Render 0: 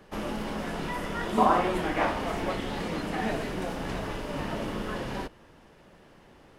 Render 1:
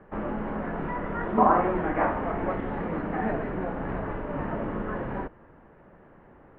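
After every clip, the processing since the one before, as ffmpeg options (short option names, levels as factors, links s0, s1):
-af "lowpass=f=1800:w=0.5412,lowpass=f=1800:w=1.3066,volume=1.26"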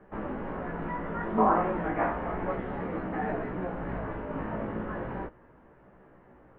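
-af "flanger=delay=15.5:depth=2.8:speed=0.34"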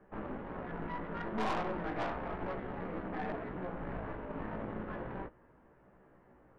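-af "aeval=exprs='(tanh(25.1*val(0)+0.65)-tanh(0.65))/25.1':c=same,volume=0.708"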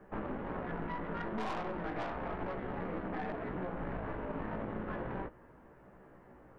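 -af "acompressor=threshold=0.0112:ratio=6,volume=1.78"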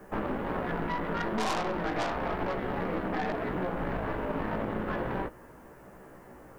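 -af "bass=f=250:g=-2,treble=f=4000:g=14,volume=2.37"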